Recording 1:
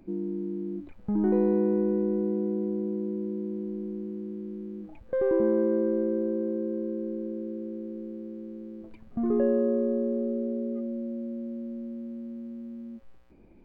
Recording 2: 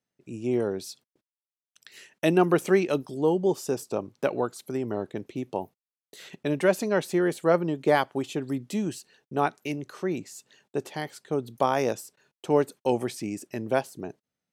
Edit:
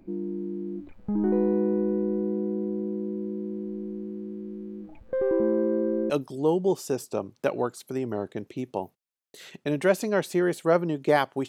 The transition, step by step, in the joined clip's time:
recording 1
6.1 switch to recording 2 from 2.89 s

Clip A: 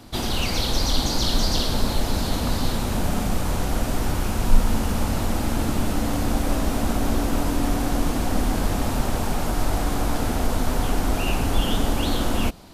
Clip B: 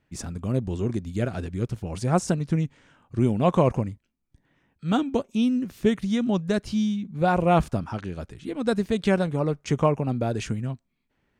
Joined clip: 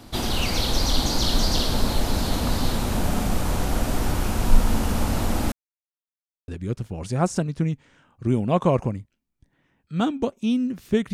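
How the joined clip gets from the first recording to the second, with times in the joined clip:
clip A
5.52–6.48 mute
6.48 switch to clip B from 1.4 s

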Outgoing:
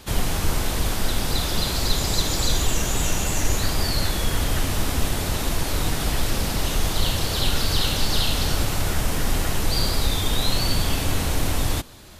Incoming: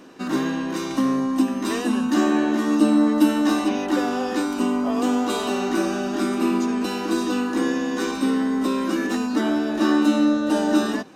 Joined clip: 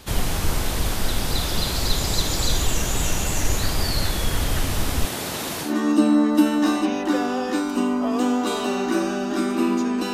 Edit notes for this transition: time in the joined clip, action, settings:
outgoing
5.06–5.75 HPF 190 Hz 12 dB/oct
5.68 switch to incoming from 2.51 s, crossfade 0.14 s

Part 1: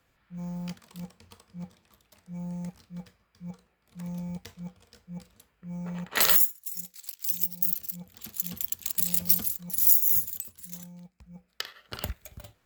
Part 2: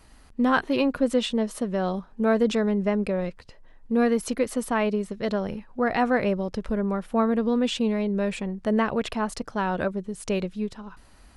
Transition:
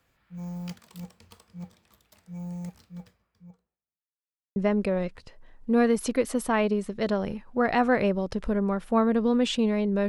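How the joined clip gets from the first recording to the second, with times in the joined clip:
part 1
2.72–3.99 studio fade out
3.99–4.56 mute
4.56 switch to part 2 from 2.78 s

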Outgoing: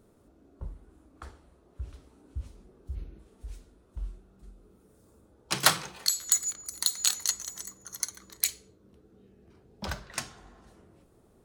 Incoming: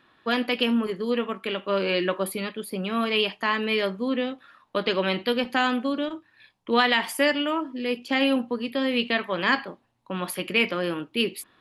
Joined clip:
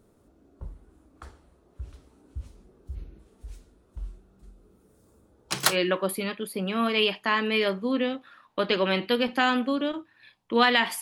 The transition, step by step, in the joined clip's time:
outgoing
5.71 switch to incoming from 1.88 s, crossfade 0.12 s

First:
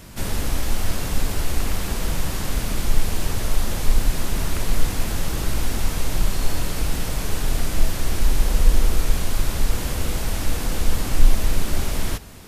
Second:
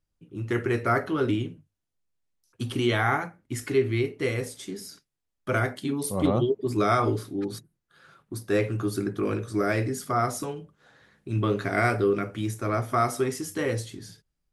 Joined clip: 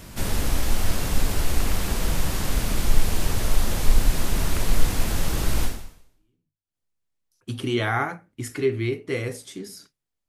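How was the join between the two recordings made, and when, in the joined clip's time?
first
6.21 switch to second from 1.33 s, crossfade 1.14 s exponential

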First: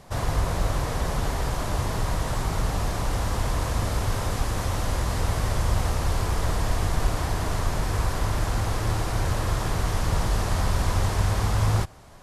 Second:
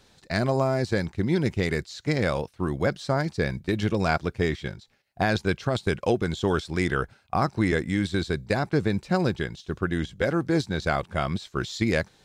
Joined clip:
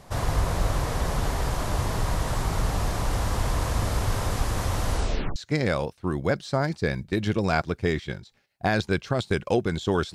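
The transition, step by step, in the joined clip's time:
first
4.92 tape stop 0.44 s
5.36 switch to second from 1.92 s

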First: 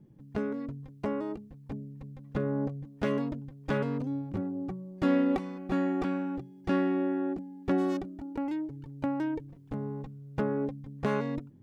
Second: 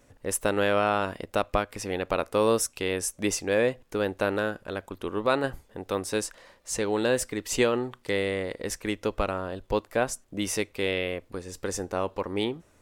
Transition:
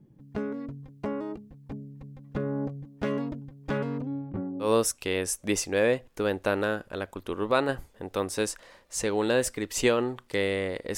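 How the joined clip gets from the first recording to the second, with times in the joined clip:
first
4–4.71 LPF 3200 Hz -> 1200 Hz
4.65 switch to second from 2.4 s, crossfade 0.12 s

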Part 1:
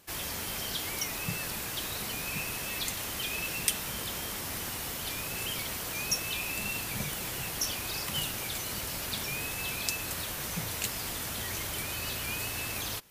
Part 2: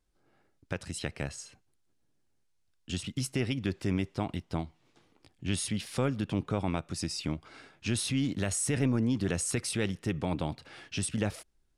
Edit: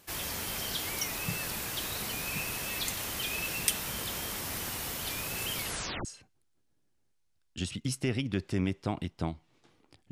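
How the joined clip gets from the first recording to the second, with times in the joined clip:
part 1
5.61 tape stop 0.44 s
6.05 switch to part 2 from 1.37 s

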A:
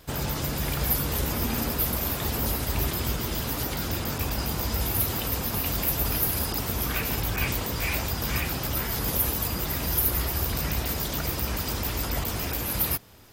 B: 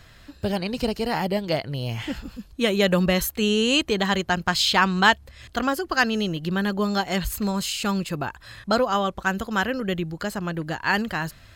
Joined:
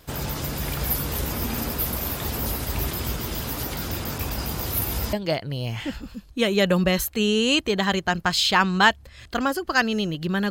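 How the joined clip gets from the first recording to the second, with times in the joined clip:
A
4.66–5.13 reverse
5.13 switch to B from 1.35 s

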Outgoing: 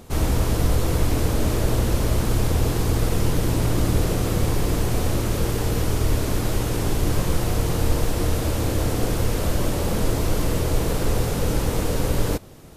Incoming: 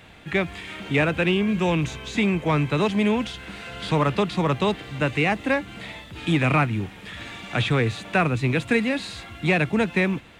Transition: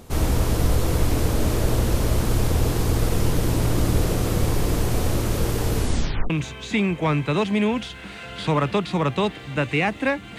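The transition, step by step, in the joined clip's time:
outgoing
5.75 tape stop 0.55 s
6.3 switch to incoming from 1.74 s

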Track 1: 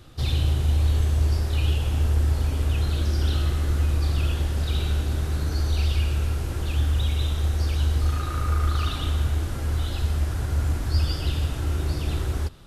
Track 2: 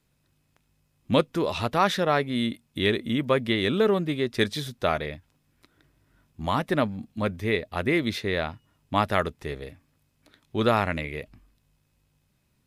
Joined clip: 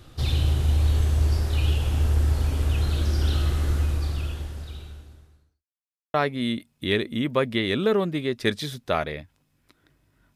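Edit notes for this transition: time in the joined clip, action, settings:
track 1
3.69–5.65 fade out quadratic
5.65–6.14 mute
6.14 switch to track 2 from 2.08 s

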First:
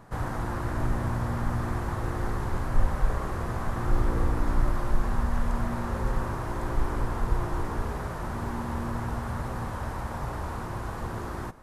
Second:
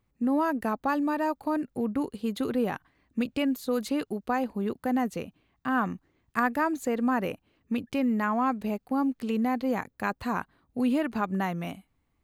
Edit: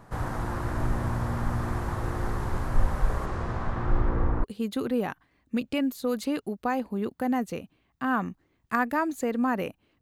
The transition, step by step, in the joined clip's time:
first
3.25–4.44 LPF 7400 Hz -> 1500 Hz
4.44 switch to second from 2.08 s

